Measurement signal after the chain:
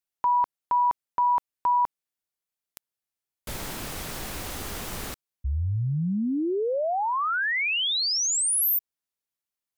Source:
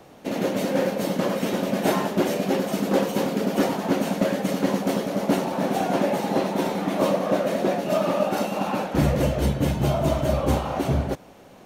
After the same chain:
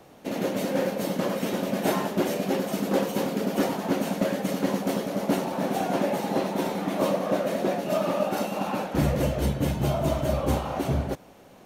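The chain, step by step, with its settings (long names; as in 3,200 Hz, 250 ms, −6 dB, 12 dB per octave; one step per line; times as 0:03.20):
parametric band 13,000 Hz +3 dB 0.91 octaves
level −3 dB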